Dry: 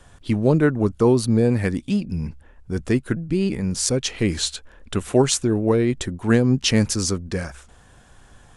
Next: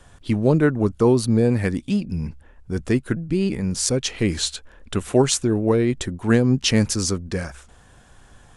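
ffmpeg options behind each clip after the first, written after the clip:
-af anull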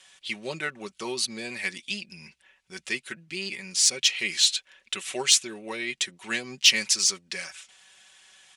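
-af "bandpass=f=2100:t=q:w=0.82:csg=0,aecho=1:1:5.3:0.67,aexciter=amount=3.8:drive=7.1:freq=2100,volume=0.501"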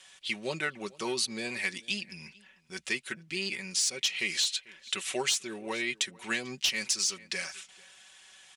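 -filter_complex "[0:a]asplit=2[s0][s1];[s1]adelay=443.1,volume=0.0708,highshelf=f=4000:g=-9.97[s2];[s0][s2]amix=inputs=2:normalize=0,asoftclip=type=tanh:threshold=0.251,acompressor=threshold=0.0562:ratio=12"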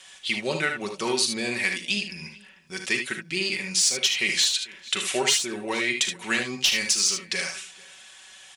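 -af "aecho=1:1:39|58|75:0.251|0.251|0.422,volume=2"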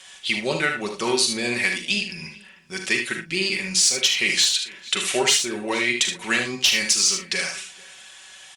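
-filter_complex "[0:a]asplit=2[s0][s1];[s1]adelay=42,volume=0.266[s2];[s0][s2]amix=inputs=2:normalize=0,volume=1.41" -ar 48000 -c:a libopus -b:a 64k

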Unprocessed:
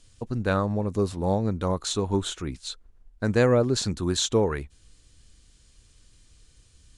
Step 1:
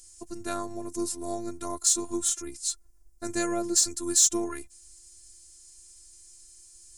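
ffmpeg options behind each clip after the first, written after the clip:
-af "aexciter=amount=4.6:drive=9.4:freq=5100,afftfilt=real='hypot(re,im)*cos(PI*b)':imag='0':win_size=512:overlap=0.75,volume=0.708"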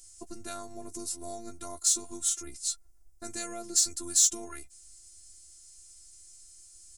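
-filter_complex "[0:a]acrossover=split=2300[s0][s1];[s0]alimiter=level_in=1.5:limit=0.0631:level=0:latency=1:release=422,volume=0.668[s2];[s2][s1]amix=inputs=2:normalize=0,asplit=2[s3][s4];[s4]adelay=13,volume=0.398[s5];[s3][s5]amix=inputs=2:normalize=0,volume=0.794"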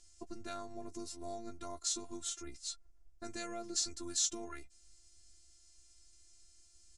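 -af "lowpass=4600,volume=0.708"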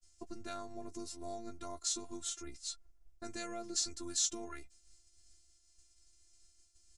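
-af "agate=range=0.0224:threshold=0.00158:ratio=3:detection=peak"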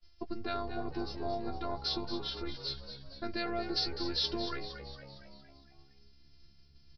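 -filter_complex "[0:a]asplit=2[s0][s1];[s1]asplit=6[s2][s3][s4][s5][s6][s7];[s2]adelay=230,afreqshift=68,volume=0.316[s8];[s3]adelay=460,afreqshift=136,volume=0.178[s9];[s4]adelay=690,afreqshift=204,volume=0.0989[s10];[s5]adelay=920,afreqshift=272,volume=0.0556[s11];[s6]adelay=1150,afreqshift=340,volume=0.0313[s12];[s7]adelay=1380,afreqshift=408,volume=0.0174[s13];[s8][s9][s10][s11][s12][s13]amix=inputs=6:normalize=0[s14];[s0][s14]amix=inputs=2:normalize=0,aresample=11025,aresample=44100,volume=2.37"

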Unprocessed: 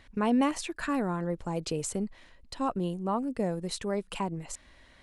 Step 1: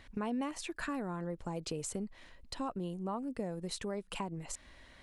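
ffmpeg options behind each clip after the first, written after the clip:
-af "acompressor=threshold=0.0126:ratio=2.5"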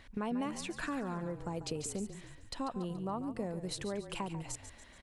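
-filter_complex "[0:a]asplit=6[s0][s1][s2][s3][s4][s5];[s1]adelay=142,afreqshift=-34,volume=0.282[s6];[s2]adelay=284,afreqshift=-68,volume=0.135[s7];[s3]adelay=426,afreqshift=-102,volume=0.0646[s8];[s4]adelay=568,afreqshift=-136,volume=0.0313[s9];[s5]adelay=710,afreqshift=-170,volume=0.015[s10];[s0][s6][s7][s8][s9][s10]amix=inputs=6:normalize=0"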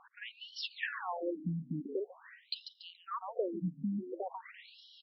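-af "afftfilt=real='re*between(b*sr/1024,200*pow(4100/200,0.5+0.5*sin(2*PI*0.46*pts/sr))/1.41,200*pow(4100/200,0.5+0.5*sin(2*PI*0.46*pts/sr))*1.41)':imag='im*between(b*sr/1024,200*pow(4100/200,0.5+0.5*sin(2*PI*0.46*pts/sr))/1.41,200*pow(4100/200,0.5+0.5*sin(2*PI*0.46*pts/sr))*1.41)':win_size=1024:overlap=0.75,volume=2.51"

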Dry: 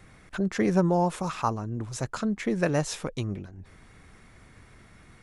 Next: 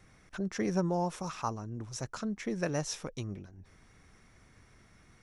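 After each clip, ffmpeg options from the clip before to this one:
-af "equalizer=f=5700:t=o:w=0.22:g=10,volume=0.422"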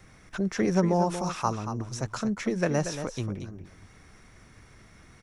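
-filter_complex "[0:a]acrossover=split=420|2500[s0][s1][s2];[s2]alimiter=level_in=3.76:limit=0.0631:level=0:latency=1:release=216,volume=0.266[s3];[s0][s1][s3]amix=inputs=3:normalize=0,aecho=1:1:233:0.335,volume=2.11"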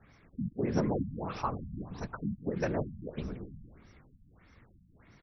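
-filter_complex "[0:a]afftfilt=real='hypot(re,im)*cos(2*PI*random(0))':imag='hypot(re,im)*sin(2*PI*random(1))':win_size=512:overlap=0.75,asplit=7[s0][s1][s2][s3][s4][s5][s6];[s1]adelay=170,afreqshift=-35,volume=0.178[s7];[s2]adelay=340,afreqshift=-70,volume=0.107[s8];[s3]adelay=510,afreqshift=-105,volume=0.0638[s9];[s4]adelay=680,afreqshift=-140,volume=0.0385[s10];[s5]adelay=850,afreqshift=-175,volume=0.0232[s11];[s6]adelay=1020,afreqshift=-210,volume=0.0138[s12];[s0][s7][s8][s9][s10][s11][s12]amix=inputs=7:normalize=0,afftfilt=real='re*lt(b*sr/1024,230*pow(6100/230,0.5+0.5*sin(2*PI*1.6*pts/sr)))':imag='im*lt(b*sr/1024,230*pow(6100/230,0.5+0.5*sin(2*PI*1.6*pts/sr)))':win_size=1024:overlap=0.75"

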